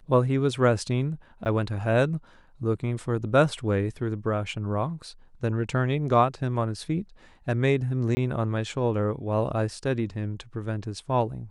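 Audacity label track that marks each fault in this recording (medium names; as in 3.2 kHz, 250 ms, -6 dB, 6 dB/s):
1.450000	1.460000	dropout 9.1 ms
8.150000	8.170000	dropout 20 ms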